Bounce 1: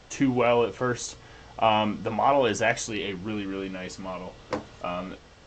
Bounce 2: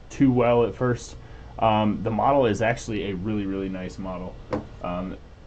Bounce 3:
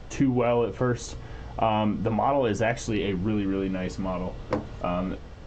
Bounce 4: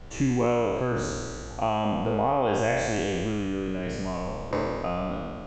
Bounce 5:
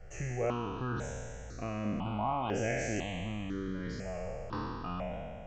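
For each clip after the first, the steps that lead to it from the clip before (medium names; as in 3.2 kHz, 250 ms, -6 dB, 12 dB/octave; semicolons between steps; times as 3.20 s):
tilt EQ -2.5 dB/octave
compression 2.5:1, threshold -26 dBFS, peak gain reduction 8.5 dB; trim +3 dB
spectral sustain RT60 2.16 s; trim -4.5 dB
stepped phaser 2 Hz 1–3.8 kHz; trim -5 dB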